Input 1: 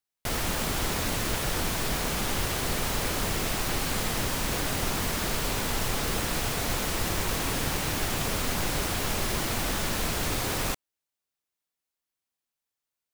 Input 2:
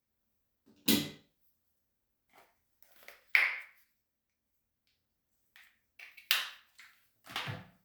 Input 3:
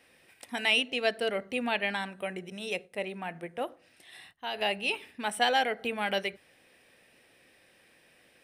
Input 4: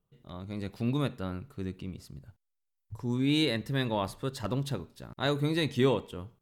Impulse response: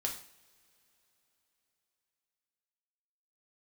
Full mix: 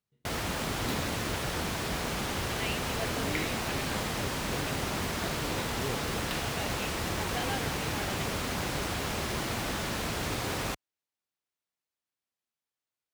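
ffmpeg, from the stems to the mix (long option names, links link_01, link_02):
-filter_complex "[0:a]volume=-2dB[link_01];[1:a]volume=-10dB[link_02];[2:a]adelay=1950,volume=-11.5dB[link_03];[3:a]volume=-13dB[link_04];[link_01][link_02][link_03][link_04]amix=inputs=4:normalize=0,highpass=55,highshelf=frequency=7500:gain=-9"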